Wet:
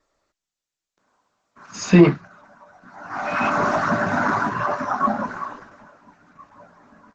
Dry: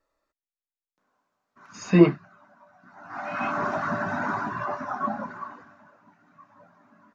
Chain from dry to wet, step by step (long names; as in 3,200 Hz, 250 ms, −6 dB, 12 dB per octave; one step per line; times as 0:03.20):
high-shelf EQ 5,700 Hz +9 dB
boost into a limiter +8.5 dB
level −1 dB
Opus 12 kbit/s 48,000 Hz